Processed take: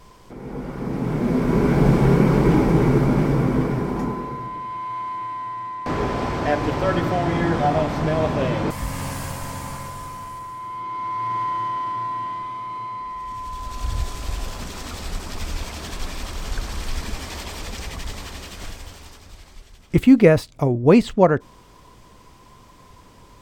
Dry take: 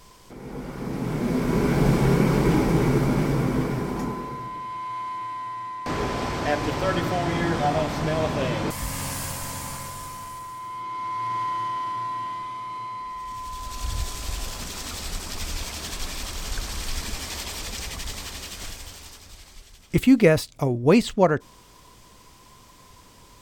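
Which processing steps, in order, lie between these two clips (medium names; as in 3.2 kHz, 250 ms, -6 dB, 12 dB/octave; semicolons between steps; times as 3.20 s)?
treble shelf 2.7 kHz -9.5 dB; trim +4 dB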